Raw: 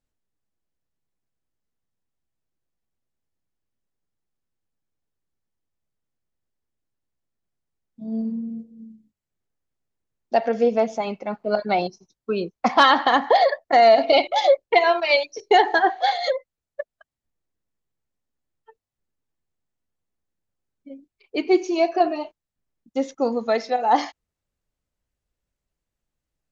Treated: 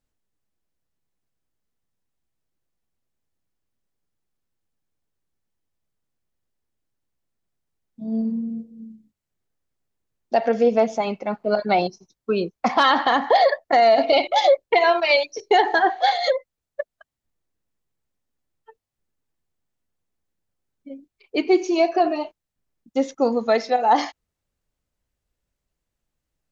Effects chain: loudness maximiser +9.5 dB; trim -7 dB

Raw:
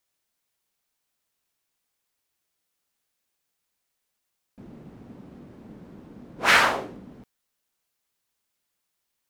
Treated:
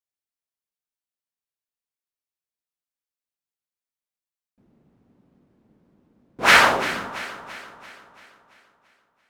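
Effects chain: gate with hold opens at -34 dBFS; echo whose repeats swap between lows and highs 169 ms, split 1.2 kHz, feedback 71%, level -11 dB; trim +4.5 dB

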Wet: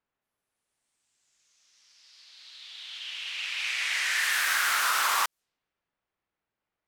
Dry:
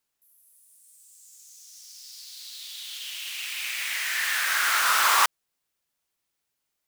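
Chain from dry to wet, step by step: level-controlled noise filter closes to 1.9 kHz, open at -22 dBFS; compression 10:1, threshold -24 dBFS, peak gain reduction 9 dB; trim +2 dB

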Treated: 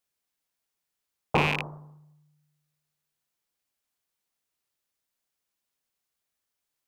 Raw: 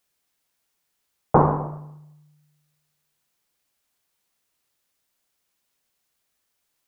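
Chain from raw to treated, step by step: rattle on loud lows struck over -26 dBFS, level -6 dBFS; trim -8.5 dB

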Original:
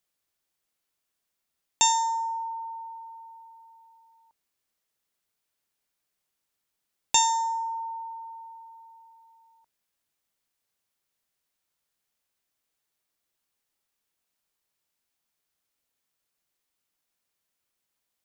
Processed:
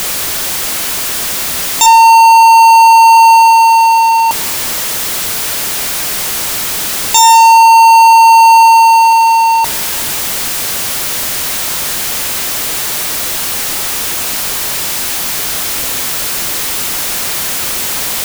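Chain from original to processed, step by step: 1.86–3.17 s: band-pass filter 710 Hz, Q 0.99; power-law waveshaper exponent 0.35; feedback echo behind a low-pass 183 ms, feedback 65%, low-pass 850 Hz, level -18.5 dB; loudness maximiser +19.5 dB; trim -1 dB

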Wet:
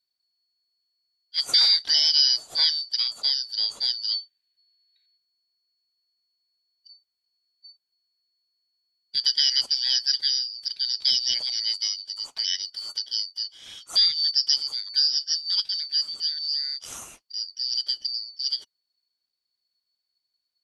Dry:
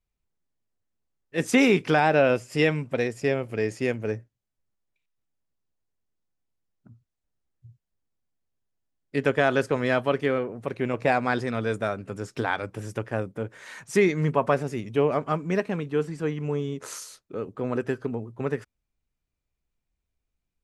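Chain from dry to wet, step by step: four frequency bands reordered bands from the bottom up 4321; 4.11–5.17 s: time-frequency box 1.5–4.6 kHz +8 dB; 17.87–18.34 s: bass shelf 240 Hz +8 dB

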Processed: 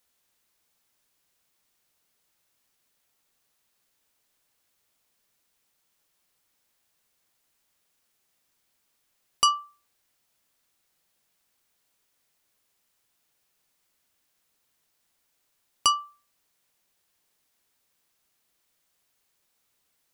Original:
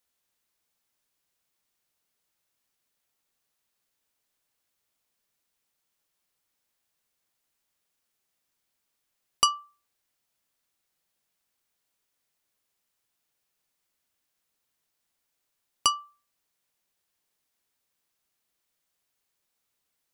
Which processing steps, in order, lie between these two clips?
peak limiter -14 dBFS, peak gain reduction 7.5 dB; trim +6 dB

